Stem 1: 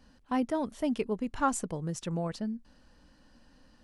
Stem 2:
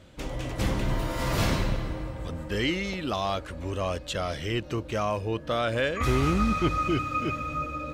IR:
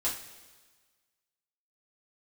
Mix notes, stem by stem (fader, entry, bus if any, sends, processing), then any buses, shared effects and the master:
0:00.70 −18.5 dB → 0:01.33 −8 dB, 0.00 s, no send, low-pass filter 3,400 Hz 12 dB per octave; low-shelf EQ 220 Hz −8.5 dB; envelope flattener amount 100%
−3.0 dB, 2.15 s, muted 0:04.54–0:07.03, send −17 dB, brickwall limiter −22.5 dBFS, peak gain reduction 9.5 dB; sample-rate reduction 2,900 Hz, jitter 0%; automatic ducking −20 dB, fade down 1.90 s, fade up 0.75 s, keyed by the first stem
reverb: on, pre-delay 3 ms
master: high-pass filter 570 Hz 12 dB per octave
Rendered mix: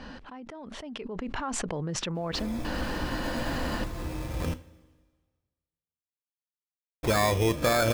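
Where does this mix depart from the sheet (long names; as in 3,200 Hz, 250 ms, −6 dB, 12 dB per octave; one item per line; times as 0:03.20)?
stem 2 −3.0 dB → +6.5 dB
master: missing high-pass filter 570 Hz 12 dB per octave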